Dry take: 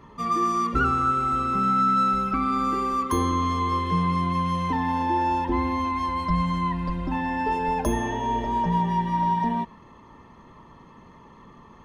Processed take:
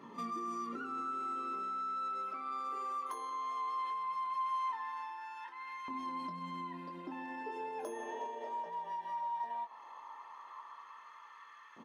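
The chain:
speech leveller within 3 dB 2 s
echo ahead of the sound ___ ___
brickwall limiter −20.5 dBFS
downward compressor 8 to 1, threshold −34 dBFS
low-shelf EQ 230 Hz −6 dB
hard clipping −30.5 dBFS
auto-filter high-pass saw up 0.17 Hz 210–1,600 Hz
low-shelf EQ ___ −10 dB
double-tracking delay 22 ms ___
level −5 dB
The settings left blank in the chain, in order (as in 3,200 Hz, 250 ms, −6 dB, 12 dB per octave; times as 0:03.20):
49 ms, −23 dB, 97 Hz, −7.5 dB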